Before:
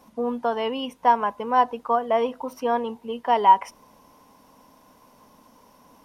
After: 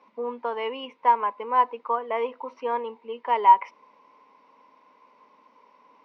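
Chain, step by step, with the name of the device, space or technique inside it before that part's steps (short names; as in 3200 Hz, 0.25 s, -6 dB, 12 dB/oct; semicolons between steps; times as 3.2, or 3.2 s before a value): phone earpiece (speaker cabinet 390–3900 Hz, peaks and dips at 440 Hz +3 dB, 710 Hz -8 dB, 1000 Hz +5 dB, 1600 Hz -4 dB, 2200 Hz +8 dB, 3300 Hz -5 dB); gain -3 dB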